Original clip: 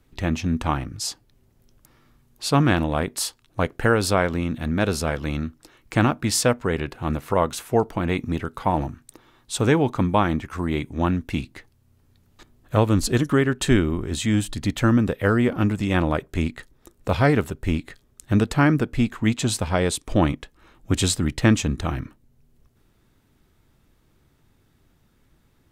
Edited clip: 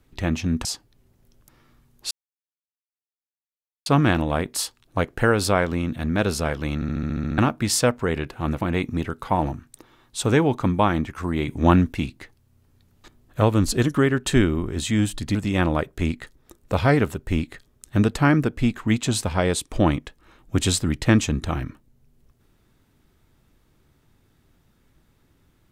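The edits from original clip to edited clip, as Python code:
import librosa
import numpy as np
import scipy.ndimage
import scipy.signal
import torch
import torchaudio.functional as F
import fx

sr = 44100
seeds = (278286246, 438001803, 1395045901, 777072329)

y = fx.edit(x, sr, fx.cut(start_s=0.65, length_s=0.37),
    fx.insert_silence(at_s=2.48, length_s=1.75),
    fx.stutter_over(start_s=5.37, slice_s=0.07, count=9),
    fx.cut(start_s=7.23, length_s=0.73),
    fx.clip_gain(start_s=10.83, length_s=0.45, db=6.0),
    fx.cut(start_s=14.7, length_s=1.01), tone=tone)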